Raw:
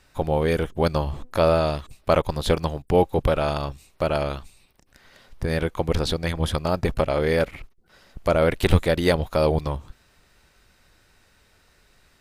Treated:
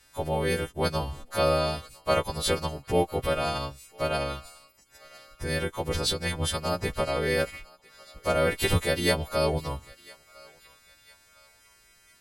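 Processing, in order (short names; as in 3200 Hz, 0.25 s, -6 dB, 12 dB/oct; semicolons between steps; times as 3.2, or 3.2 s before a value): frequency quantiser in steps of 2 st; thinning echo 1.003 s, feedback 51%, high-pass 1100 Hz, level -21 dB; gain -5 dB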